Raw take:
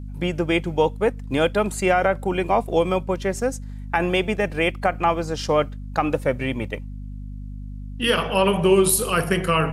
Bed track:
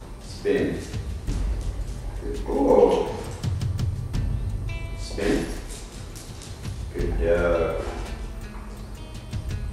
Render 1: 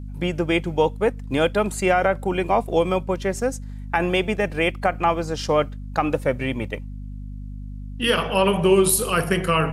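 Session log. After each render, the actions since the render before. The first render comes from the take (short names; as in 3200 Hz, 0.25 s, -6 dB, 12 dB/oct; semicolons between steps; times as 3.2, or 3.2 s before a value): nothing audible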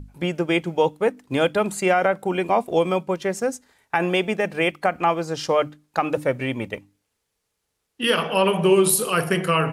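notches 50/100/150/200/250/300 Hz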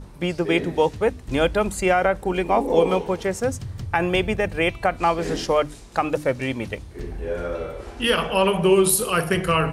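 add bed track -6.5 dB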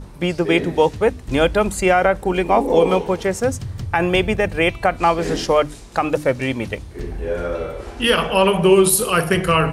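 gain +4 dB; limiter -3 dBFS, peak gain reduction 3 dB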